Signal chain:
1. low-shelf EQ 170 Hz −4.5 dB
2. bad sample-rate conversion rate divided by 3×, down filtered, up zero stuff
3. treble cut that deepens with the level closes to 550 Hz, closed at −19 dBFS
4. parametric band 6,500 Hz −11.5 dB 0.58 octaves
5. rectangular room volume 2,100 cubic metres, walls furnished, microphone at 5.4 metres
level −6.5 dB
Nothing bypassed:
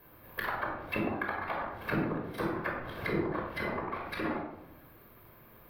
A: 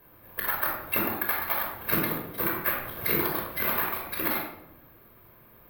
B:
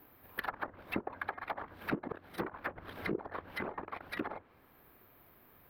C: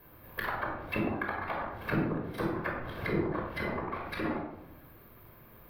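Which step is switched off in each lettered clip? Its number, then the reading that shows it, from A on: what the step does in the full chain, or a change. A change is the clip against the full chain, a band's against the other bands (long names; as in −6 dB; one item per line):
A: 3, 4 kHz band +7.5 dB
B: 5, echo-to-direct ratio 0.5 dB to none audible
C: 1, 125 Hz band +3.0 dB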